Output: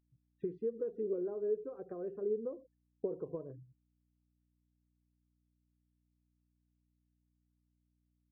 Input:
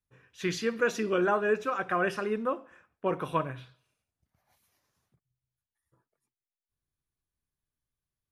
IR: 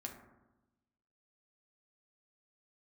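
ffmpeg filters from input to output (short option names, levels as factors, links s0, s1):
-af "afftfilt=real='re*gte(hypot(re,im),0.0141)':imag='im*gte(hypot(re,im),0.0141)':win_size=1024:overlap=0.75,acompressor=threshold=0.01:ratio=10,aeval=exprs='val(0)+0.000158*(sin(2*PI*60*n/s)+sin(2*PI*2*60*n/s)/2+sin(2*PI*3*60*n/s)/3+sin(2*PI*4*60*n/s)/4+sin(2*PI*5*60*n/s)/5)':c=same,lowpass=f=440:t=q:w=4.4,volume=0.794"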